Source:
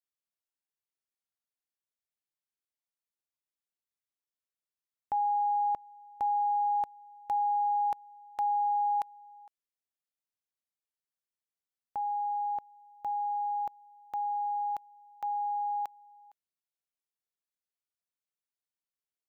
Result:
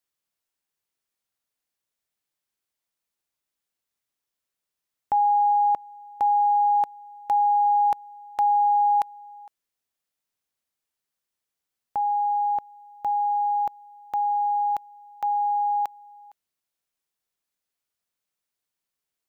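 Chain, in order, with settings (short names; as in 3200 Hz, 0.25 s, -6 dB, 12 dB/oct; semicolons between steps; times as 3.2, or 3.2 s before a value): 5.52–7.66 low shelf 120 Hz -11 dB; gain +8.5 dB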